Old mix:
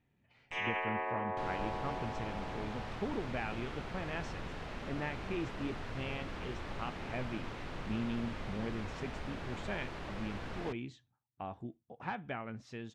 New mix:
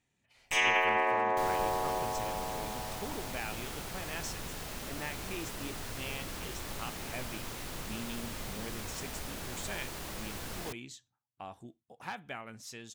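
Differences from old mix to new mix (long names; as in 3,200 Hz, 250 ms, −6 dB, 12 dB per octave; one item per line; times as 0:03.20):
speech: add low-shelf EQ 490 Hz −7 dB
first sound +8.0 dB
master: remove low-pass filter 2,600 Hz 12 dB per octave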